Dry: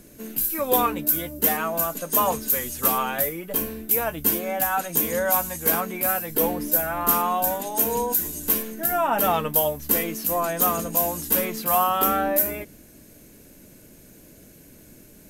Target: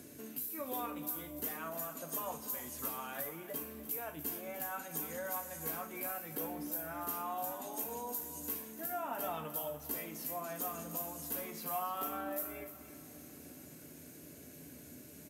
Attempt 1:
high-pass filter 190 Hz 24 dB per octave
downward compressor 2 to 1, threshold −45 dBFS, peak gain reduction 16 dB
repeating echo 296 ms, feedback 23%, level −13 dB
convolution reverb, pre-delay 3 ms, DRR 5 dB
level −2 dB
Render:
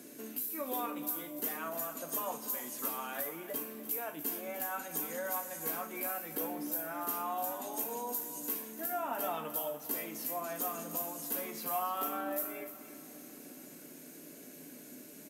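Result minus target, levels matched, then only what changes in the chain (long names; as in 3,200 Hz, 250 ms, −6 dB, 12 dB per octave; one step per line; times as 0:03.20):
125 Hz band −7.0 dB; downward compressor: peak gain reduction −3 dB
change: high-pass filter 89 Hz 24 dB per octave
change: downward compressor 2 to 1, threshold −51 dBFS, peak gain reduction 19 dB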